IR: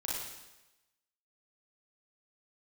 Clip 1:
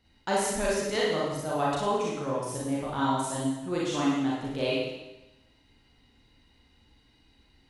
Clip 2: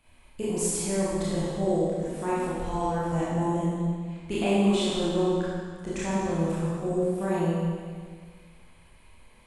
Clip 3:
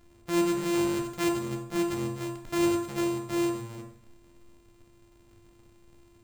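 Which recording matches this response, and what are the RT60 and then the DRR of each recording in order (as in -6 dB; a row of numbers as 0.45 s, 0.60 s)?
1; 1.0 s, 1.8 s, 0.60 s; -6.0 dB, -10.0 dB, 2.0 dB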